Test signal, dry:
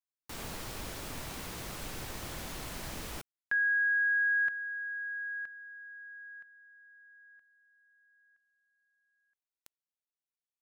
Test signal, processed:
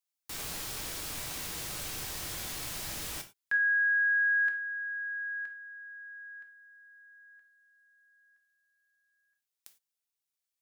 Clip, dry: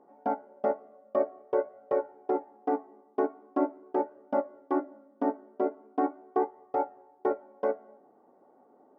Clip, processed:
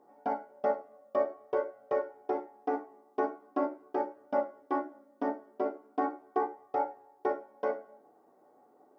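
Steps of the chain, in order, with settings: treble shelf 2.2 kHz +10.5 dB; gated-style reverb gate 130 ms falling, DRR 5 dB; trim -4 dB

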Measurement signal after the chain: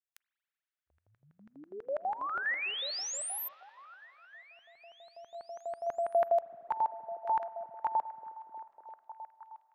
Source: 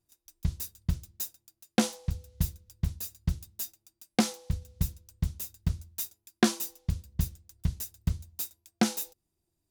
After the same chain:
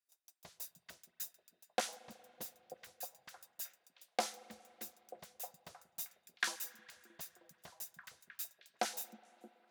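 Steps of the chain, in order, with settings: LFO high-pass square 6.1 Hz 630–1600 Hz; repeats whose band climbs or falls 312 ms, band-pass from 170 Hz, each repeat 0.7 oct, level -5.5 dB; spring tank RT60 3.3 s, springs 37/46 ms, chirp 65 ms, DRR 17.5 dB; trim -9 dB

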